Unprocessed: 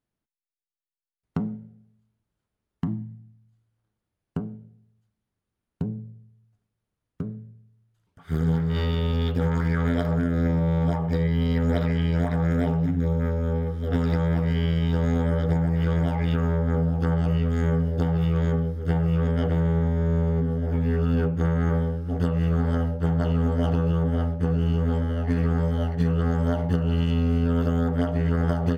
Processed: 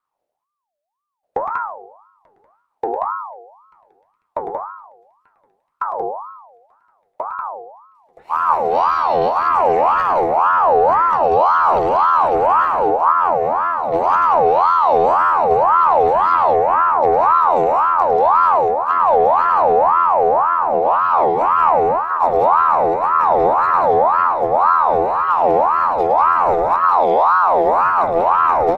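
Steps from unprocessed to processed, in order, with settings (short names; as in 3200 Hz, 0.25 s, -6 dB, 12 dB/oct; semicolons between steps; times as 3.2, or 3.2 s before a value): low shelf 210 Hz +11.5 dB; loudspeakers at several distances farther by 37 m -6 dB, 64 m -3 dB; in parallel at -11 dB: soft clip -19.5 dBFS, distortion -8 dB; on the sum: wow and flutter 73 cents; on a send: thinning echo 0.888 s, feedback 72%, high-pass 720 Hz, level -23 dB; on the sum: ring modulator with a swept carrier 890 Hz, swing 35%, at 1.9 Hz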